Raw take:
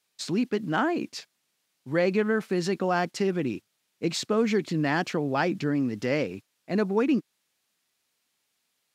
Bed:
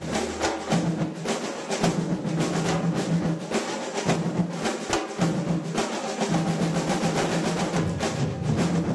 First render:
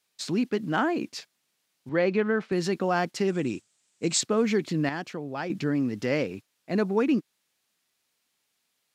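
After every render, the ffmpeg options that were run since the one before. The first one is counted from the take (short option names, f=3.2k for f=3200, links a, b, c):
-filter_complex "[0:a]asettb=1/sr,asplit=3[a][b][c];[a]atrim=end=1.894[d];[b]atrim=start=1.89:end=2.52,asetpts=PTS-STARTPTS,afade=t=in:d=0.004:c=qsin,afade=t=out:st=0.626:d=0.004:c=qsin,highpass=150,lowpass=4.1k[e];[c]atrim=start=2.516[f];[d][e]acrossfade=d=0.004:c1=hsin:c2=qsin[g];[g][f]acrossfade=d=0.004:c1=qsin:c2=hsin,asettb=1/sr,asplit=3[h][i][j];[h]atrim=end=3.274[k];[i]atrim=start=3.27:end=4.21,asetpts=PTS-STARTPTS,afade=t=in:d=0.004:c=qsin,afade=t=out:st=0.936:d=0.004:c=qsin,lowpass=f=7.8k:t=q:w=4.7[l];[j]atrim=start=4.206[m];[k][l]acrossfade=d=0.004:c1=hsin:c2=qsin[n];[n][m]acrossfade=d=0.004:c1=qsin:c2=hsin,asplit=3[o][p][q];[o]atrim=end=4.892[r];[p]atrim=start=4.888:end=5.502,asetpts=PTS-STARTPTS,volume=-7.5dB[s];[q]atrim=start=5.498[t];[r][s]acrossfade=d=0.004:c1=hsin:c2=hsin[u];[u][t]acrossfade=d=0.004:c1=hsin:c2=hsin"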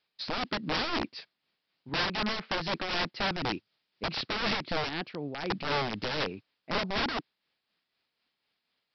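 -af "aresample=11025,aeval=exprs='(mod(15*val(0)+1,2)-1)/15':c=same,aresample=44100,tremolo=f=4:d=0.45"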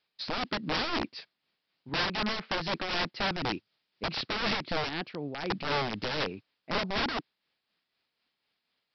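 -af anull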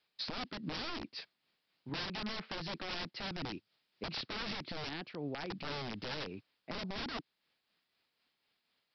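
-filter_complex "[0:a]acrossover=split=360|3000[a][b][c];[b]acompressor=threshold=-34dB:ratio=6[d];[a][d][c]amix=inputs=3:normalize=0,alimiter=level_in=5.5dB:limit=-24dB:level=0:latency=1:release=216,volume=-5.5dB"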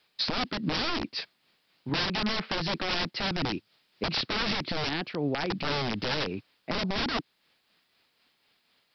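-af "volume=11dB"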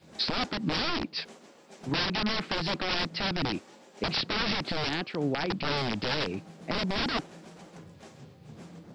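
-filter_complex "[1:a]volume=-23.5dB[a];[0:a][a]amix=inputs=2:normalize=0"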